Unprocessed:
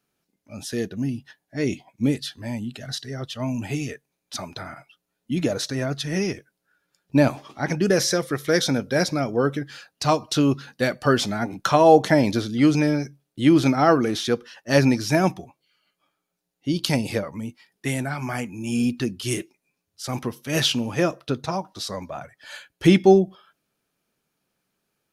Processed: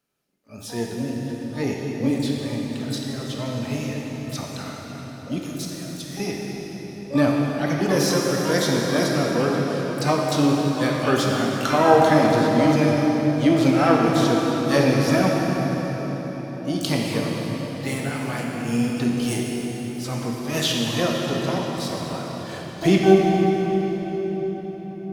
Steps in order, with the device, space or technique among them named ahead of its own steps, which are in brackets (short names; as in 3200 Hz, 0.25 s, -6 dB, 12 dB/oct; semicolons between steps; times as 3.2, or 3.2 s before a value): 5.38–6.2 pre-emphasis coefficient 0.9; shimmer-style reverb (harmoniser +12 st -11 dB; reverb RT60 5.4 s, pre-delay 18 ms, DRR -2 dB); gain -3.5 dB